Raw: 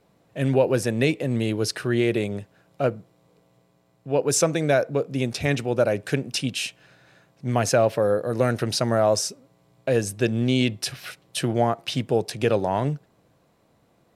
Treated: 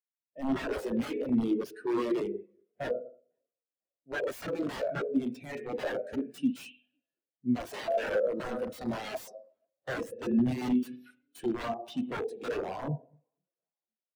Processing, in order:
high-pass filter 220 Hz 12 dB per octave
high-shelf EQ 6,200 Hz +11.5 dB
notch filter 5,100 Hz, Q 29
spring reverb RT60 1.2 s, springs 40/48/52 ms, chirp 45 ms, DRR 6.5 dB
wrap-around overflow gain 19 dB
on a send: echo with shifted repeats 499 ms, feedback 62%, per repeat +35 Hz, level −24 dB
on the sum: every bin expanded away from the loudest bin 2.5 to 1

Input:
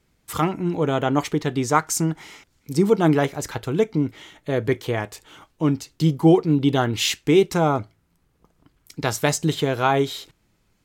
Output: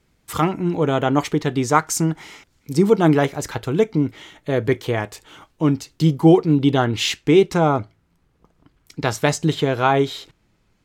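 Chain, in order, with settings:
high-shelf EQ 7,900 Hz −3.5 dB, from 0:06.71 −11 dB
level +2.5 dB

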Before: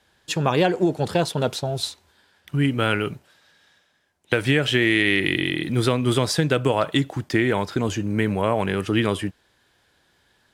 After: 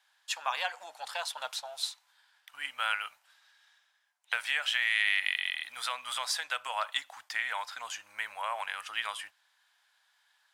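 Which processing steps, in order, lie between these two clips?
inverse Chebyshev high-pass filter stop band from 410 Hz, stop band 40 dB
level −6 dB

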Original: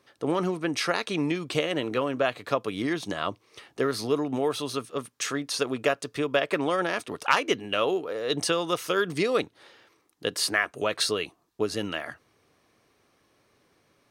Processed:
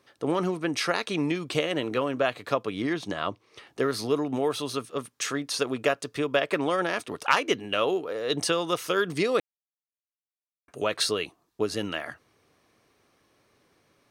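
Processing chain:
0:02.63–0:03.67: high-shelf EQ 7,800 Hz −10 dB
0:09.40–0:10.68: silence

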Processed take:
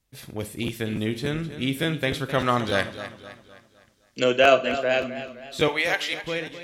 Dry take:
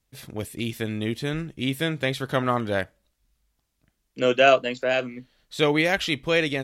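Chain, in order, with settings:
fade-out on the ending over 0.69 s
0:02.38–0:04.24: parametric band 5,400 Hz +12.5 dB 2 octaves
0:05.68–0:06.24: high-pass filter 660 Hz 12 dB per octave
four-comb reverb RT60 0.4 s, combs from 33 ms, DRR 13 dB
regular buffer underruns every 0.29 s, samples 512, repeat, from 0:00.66
feedback echo with a swinging delay time 257 ms, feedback 44%, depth 74 cents, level −12.5 dB

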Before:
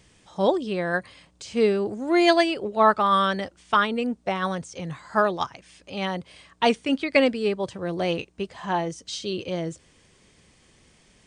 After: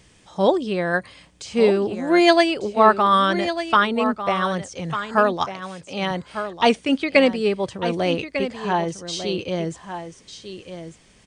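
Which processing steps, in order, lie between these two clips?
0:05.45–0:06.11: high-pass filter 140 Hz
single-tap delay 1,198 ms −10.5 dB
level +3.5 dB

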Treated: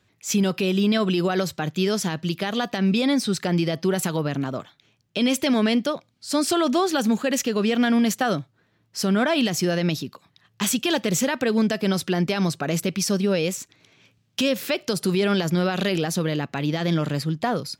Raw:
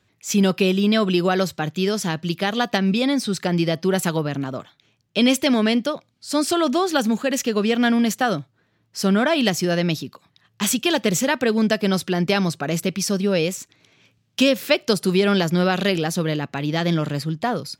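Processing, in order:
brickwall limiter −13 dBFS, peak gain reduction 8.5 dB

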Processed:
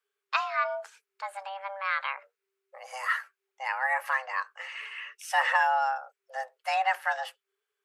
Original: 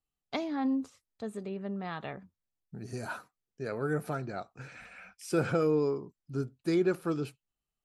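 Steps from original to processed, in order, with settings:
octave-band graphic EQ 125/250/1,000/2,000 Hz −11/−6/+10/+8 dB
frequency shifter +390 Hz
level +2 dB

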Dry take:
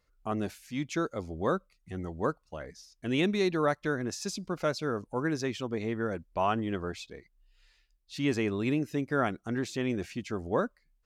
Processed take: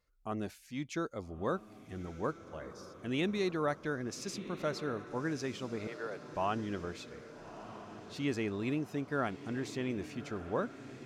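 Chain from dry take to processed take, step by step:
0:05.87–0:06.33: high-pass filter 440 Hz 24 dB per octave
feedback delay with all-pass diffusion 1,277 ms, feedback 57%, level −13 dB
level −5.5 dB

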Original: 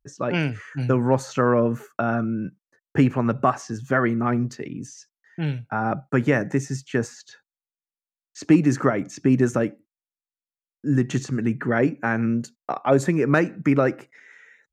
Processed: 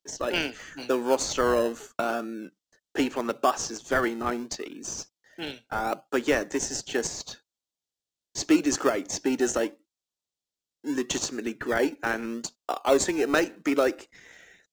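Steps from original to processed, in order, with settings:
high-pass filter 310 Hz 24 dB per octave
flat-topped bell 4,900 Hz +12 dB
in parallel at −9.5 dB: sample-and-hold swept by an LFO 30×, swing 60% 0.77 Hz
on the sum: level −3.5 dB

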